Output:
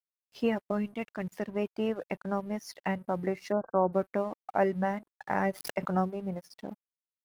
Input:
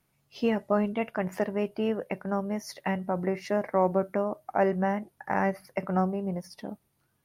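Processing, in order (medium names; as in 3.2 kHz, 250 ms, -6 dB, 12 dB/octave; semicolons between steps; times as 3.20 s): reverb removal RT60 0.52 s; 0.71–1.49 s: peaking EQ 840 Hz -8.5 dB 2 oct; crossover distortion -53.5 dBFS; 3.52–3.93 s: brick-wall FIR low-pass 1.6 kHz; 5.38–5.97 s: swell ahead of each attack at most 97 dB/s; trim -1.5 dB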